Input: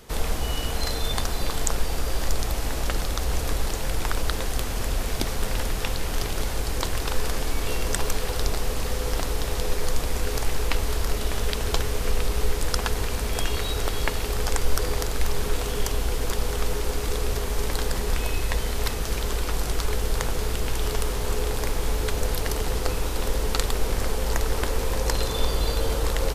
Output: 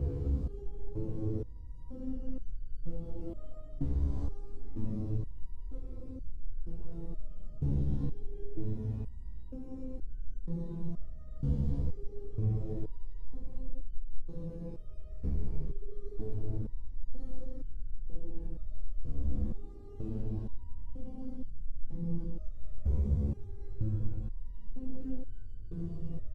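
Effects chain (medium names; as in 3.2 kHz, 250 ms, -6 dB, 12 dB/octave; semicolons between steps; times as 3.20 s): low-pass 10 kHz; treble shelf 2.5 kHz -8.5 dB; frequency-shifting echo 470 ms, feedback 57%, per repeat +76 Hz, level -11.5 dB; Paulstretch 20×, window 0.05 s, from 9.02 s; FFT filter 300 Hz 0 dB, 650 Hz -17 dB, 1.7 kHz -28 dB; compression 6:1, threshold -21 dBFS, peak gain reduction 10.5 dB; hum notches 60/120/180/240/300/360/420 Hz; resonator arpeggio 2.1 Hz 70–1500 Hz; trim +6 dB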